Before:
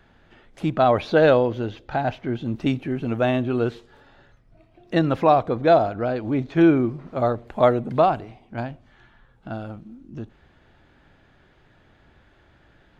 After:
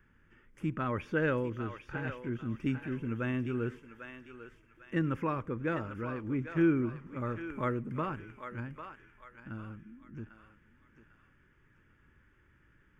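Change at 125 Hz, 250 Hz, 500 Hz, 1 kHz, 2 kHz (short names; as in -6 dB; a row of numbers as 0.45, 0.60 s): -8.5, -10.0, -17.0, -17.0, -8.0 dB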